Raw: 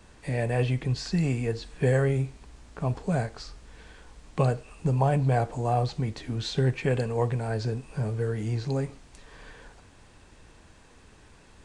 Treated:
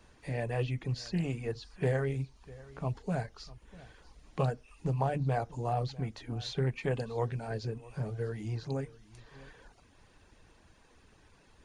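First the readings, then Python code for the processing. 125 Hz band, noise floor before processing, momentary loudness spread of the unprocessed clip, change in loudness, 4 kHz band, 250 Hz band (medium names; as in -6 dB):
-7.5 dB, -55 dBFS, 9 LU, -7.0 dB, -6.0 dB, -7.0 dB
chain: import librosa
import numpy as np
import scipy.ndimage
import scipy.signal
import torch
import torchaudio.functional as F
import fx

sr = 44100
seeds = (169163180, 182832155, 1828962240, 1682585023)

p1 = fx.hum_notches(x, sr, base_hz=50, count=5)
p2 = fx.dereverb_blind(p1, sr, rt60_s=0.6)
p3 = fx.notch(p2, sr, hz=7900.0, q=5.9)
p4 = p3 + fx.echo_single(p3, sr, ms=648, db=-20.5, dry=0)
p5 = fx.doppler_dist(p4, sr, depth_ms=0.15)
y = p5 * librosa.db_to_amplitude(-5.5)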